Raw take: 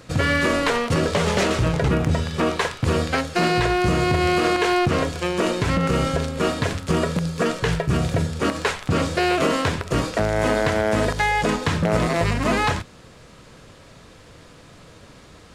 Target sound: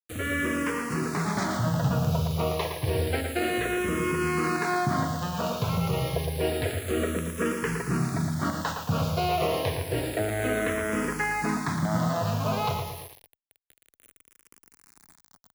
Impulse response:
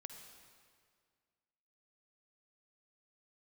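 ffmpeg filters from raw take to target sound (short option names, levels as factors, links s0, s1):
-filter_complex "[0:a]highpass=f=78:w=0.5412,highpass=f=78:w=1.3066,highshelf=f=3300:g=-5.5,bandreject=f=540:w=16,asplit=2[s0][s1];[s1]adelay=113,lowpass=f=3800:p=1,volume=0.501,asplit=2[s2][s3];[s3]adelay=113,lowpass=f=3800:p=1,volume=0.51,asplit=2[s4][s5];[s5]adelay=113,lowpass=f=3800:p=1,volume=0.51,asplit=2[s6][s7];[s7]adelay=113,lowpass=f=3800:p=1,volume=0.51,asplit=2[s8][s9];[s9]adelay=113,lowpass=f=3800:p=1,volume=0.51,asplit=2[s10][s11];[s11]adelay=113,lowpass=f=3800:p=1,volume=0.51[s12];[s0][s2][s4][s6][s8][s10][s12]amix=inputs=7:normalize=0,aeval=exprs='val(0)+0.00794*sin(2*PI*11000*n/s)':c=same,dynaudnorm=f=700:g=3:m=1.78,acrusher=bits=4:mix=0:aa=0.000001,asplit=2[s13][s14];[s14]afreqshift=-0.29[s15];[s13][s15]amix=inputs=2:normalize=1,volume=0.422"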